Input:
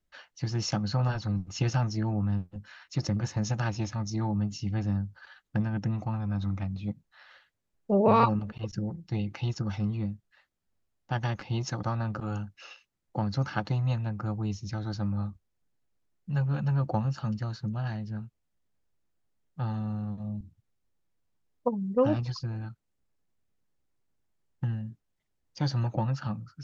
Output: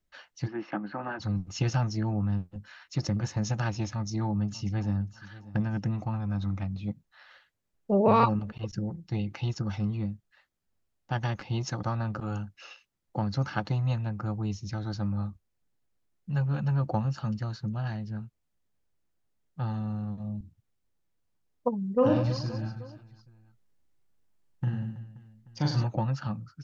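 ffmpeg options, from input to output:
ffmpeg -i in.wav -filter_complex "[0:a]asplit=3[link_01][link_02][link_03];[link_01]afade=type=out:start_time=0.46:duration=0.02[link_04];[link_02]highpass=frequency=230:width=0.5412,highpass=frequency=230:width=1.3066,equalizer=frequency=320:width_type=q:width=4:gain=7,equalizer=frequency=470:width_type=q:width=4:gain=-7,equalizer=frequency=1700:width_type=q:width=4:gain=4,lowpass=frequency=2400:width=0.5412,lowpass=frequency=2400:width=1.3066,afade=type=in:start_time=0.46:duration=0.02,afade=type=out:start_time=1.19:duration=0.02[link_05];[link_03]afade=type=in:start_time=1.19:duration=0.02[link_06];[link_04][link_05][link_06]amix=inputs=3:normalize=0,asplit=2[link_07][link_08];[link_08]afade=type=in:start_time=3.89:duration=0.01,afade=type=out:start_time=5.05:duration=0.01,aecho=0:1:590|1180|1770:0.133352|0.0400056|0.0120017[link_09];[link_07][link_09]amix=inputs=2:normalize=0,asplit=3[link_10][link_11][link_12];[link_10]afade=type=out:start_time=22.01:duration=0.02[link_13];[link_11]aecho=1:1:40|100|190|325|527.5|831.2:0.631|0.398|0.251|0.158|0.1|0.0631,afade=type=in:start_time=22.01:duration=0.02,afade=type=out:start_time=25.83:duration=0.02[link_14];[link_12]afade=type=in:start_time=25.83:duration=0.02[link_15];[link_13][link_14][link_15]amix=inputs=3:normalize=0" out.wav

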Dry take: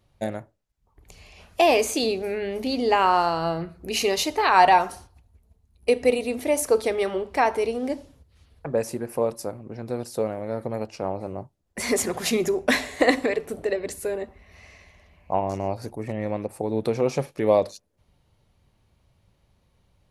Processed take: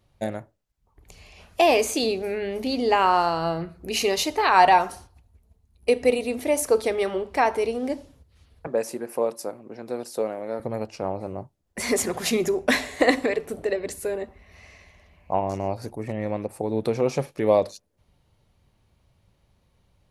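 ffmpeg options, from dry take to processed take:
ffmpeg -i in.wav -filter_complex "[0:a]asettb=1/sr,asplit=3[link_01][link_02][link_03];[link_01]atrim=end=8.674[link_04];[link_02]atrim=start=8.67:end=10.6,asetpts=PTS-STARTPTS,afade=type=in:duration=0.004:curve=qsin,afade=type=out:start_time=1.926:duration=0.004:curve=qsin,highpass=250[link_05];[link_03]atrim=start=10.596[link_06];[link_04][link_05]acrossfade=duration=0.004:curve1=hsin:curve2=qsin[link_07];[link_07][link_06]acrossfade=duration=0.004:curve1=qsin:curve2=hsin" out.wav

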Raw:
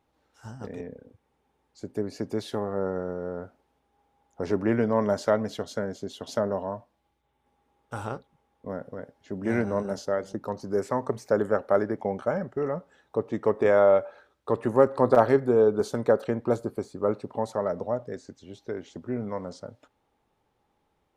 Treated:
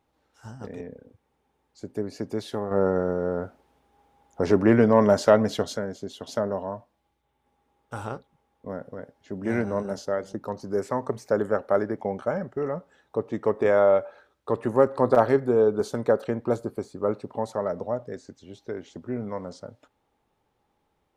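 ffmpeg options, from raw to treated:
ffmpeg -i in.wav -filter_complex "[0:a]asettb=1/sr,asplit=3[link_01][link_02][link_03];[link_01]atrim=end=2.714[link_04];[link_02]atrim=start=2.71:end=5.77,asetpts=PTS-STARTPTS,afade=type=in:duration=0.004:curve=qsin,afade=type=out:start_time=3.056:duration=0.004:curve=qsin,acontrast=69[link_05];[link_03]atrim=start=5.766[link_06];[link_04][link_05]acrossfade=duration=0.004:curve1=hsin:curve2=qsin[link_07];[link_07][link_06]acrossfade=duration=0.004:curve1=qsin:curve2=hsin" out.wav

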